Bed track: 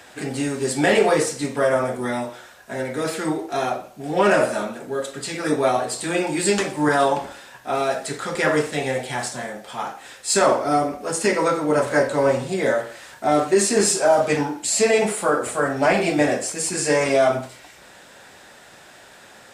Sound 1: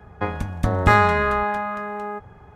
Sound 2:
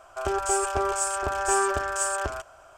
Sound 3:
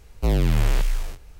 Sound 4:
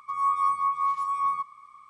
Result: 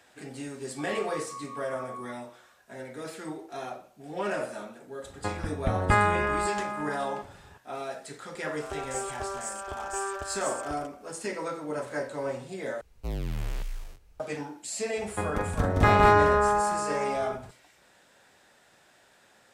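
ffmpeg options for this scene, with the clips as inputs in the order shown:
ffmpeg -i bed.wav -i cue0.wav -i cue1.wav -i cue2.wav -i cue3.wav -filter_complex "[1:a]asplit=2[link_01][link_02];[0:a]volume=-14dB[link_03];[link_01]aresample=8000,aresample=44100[link_04];[link_02]aecho=1:1:43.73|169.1|209.9:0.447|0.562|0.891[link_05];[link_03]asplit=2[link_06][link_07];[link_06]atrim=end=12.814[link_08];[3:a]atrim=end=1.39,asetpts=PTS-STARTPTS,volume=-12.5dB[link_09];[link_07]atrim=start=14.196[link_10];[4:a]atrim=end=1.89,asetpts=PTS-STARTPTS,volume=-16.5dB,afade=type=in:duration=0.004:curve=hsin,afade=type=out:start_time=1.886:duration=0.004:curve=hsin,adelay=700[link_11];[link_04]atrim=end=2.55,asetpts=PTS-STARTPTS,volume=-7dB,afade=type=in:duration=0.004:curve=hsin,afade=type=out:start_time=2.546:duration=0.004:curve=hsin,adelay=5030[link_12];[2:a]atrim=end=2.77,asetpts=PTS-STARTPTS,volume=-9.5dB,afade=type=in:duration=0.004:curve=hsin,afade=type=out:start_time=2.766:duration=0.004:curve=hsin,adelay=8450[link_13];[link_05]atrim=end=2.55,asetpts=PTS-STARTPTS,volume=-6.5dB,afade=type=in:duration=0.004:curve=hsin,afade=type=out:start_time=2.546:duration=0.004:curve=hsin,adelay=14960[link_14];[link_08][link_09]acrossfade=duration=0.004:curve1=hsin:curve2=hsin[link_15];[link_15][link_10]acrossfade=duration=0.004:curve1=hsin:curve2=hsin[link_16];[link_16][link_11][link_12][link_13][link_14]amix=inputs=5:normalize=0" out.wav

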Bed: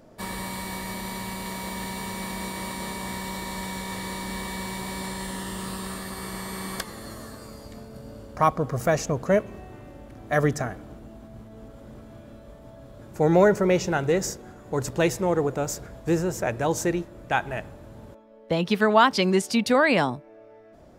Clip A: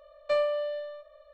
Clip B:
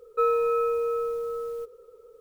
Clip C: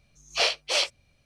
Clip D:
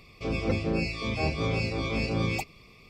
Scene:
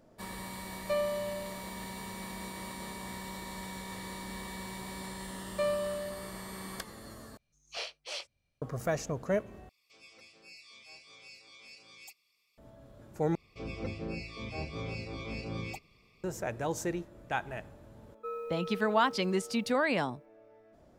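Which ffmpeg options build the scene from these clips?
ffmpeg -i bed.wav -i cue0.wav -i cue1.wav -i cue2.wav -i cue3.wav -filter_complex "[1:a]asplit=2[link_01][link_02];[4:a]asplit=2[link_03][link_04];[0:a]volume=-9dB[link_05];[link_03]aderivative[link_06];[link_05]asplit=4[link_07][link_08][link_09][link_10];[link_07]atrim=end=7.374[link_11];[3:a]atrim=end=1.25,asetpts=PTS-STARTPTS,volume=-15.5dB[link_12];[link_08]atrim=start=8.616:end=9.694[link_13];[link_06]atrim=end=2.89,asetpts=PTS-STARTPTS,volume=-10dB[link_14];[link_09]atrim=start=12.576:end=13.354[link_15];[link_04]atrim=end=2.89,asetpts=PTS-STARTPTS,volume=-10.5dB[link_16];[link_10]atrim=start=16.236[link_17];[link_01]atrim=end=1.33,asetpts=PTS-STARTPTS,volume=-5dB,afade=type=in:duration=0.004:curve=hsin,afade=type=out:start_time=1.326:duration=0.004:curve=hsin,adelay=600[link_18];[link_02]atrim=end=1.33,asetpts=PTS-STARTPTS,volume=-5dB,afade=type=in:duration=0.004:curve=hsin,afade=type=out:start_time=1.326:duration=0.004:curve=hsin,adelay=233289S[link_19];[2:a]atrim=end=2.2,asetpts=PTS-STARTPTS,volume=-16dB,afade=type=in:duration=0.004:curve=hsin,afade=type=out:start_time=2.196:duration=0.004:curve=hsin,adelay=18060[link_20];[link_11][link_12]acrossfade=duration=0.004:curve1=hsin:curve2=hsin[link_21];[link_21][link_13]acrossfade=duration=0.004:curve1=hsin:curve2=hsin[link_22];[link_22][link_14]acrossfade=duration=0.004:curve1=hsin:curve2=hsin[link_23];[link_23][link_15]acrossfade=duration=0.004:curve1=hsin:curve2=hsin[link_24];[link_24][link_16]acrossfade=duration=0.004:curve1=hsin:curve2=hsin[link_25];[link_25][link_17]acrossfade=duration=0.004:curve1=hsin:curve2=hsin[link_26];[link_26][link_18][link_19][link_20]amix=inputs=4:normalize=0" out.wav

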